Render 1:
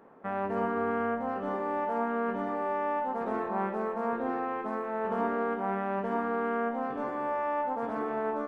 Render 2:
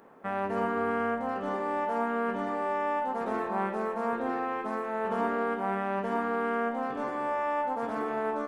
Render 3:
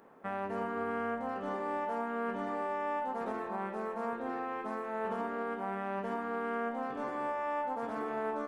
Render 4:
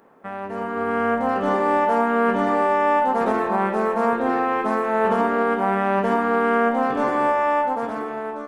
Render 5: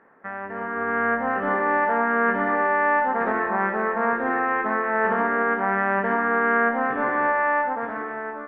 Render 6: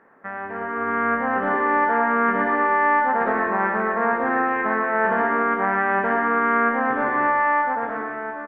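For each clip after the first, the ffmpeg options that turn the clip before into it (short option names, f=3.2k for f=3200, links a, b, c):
-af "highshelf=f=2.9k:g=11"
-af "alimiter=limit=-22.5dB:level=0:latency=1:release=459,volume=-3.5dB"
-af "dynaudnorm=f=140:g=13:m=11.5dB,volume=4.5dB"
-af "lowpass=f=1.8k:t=q:w=3.8,volume=-5dB"
-af "aecho=1:1:115:0.447,volume=1dB"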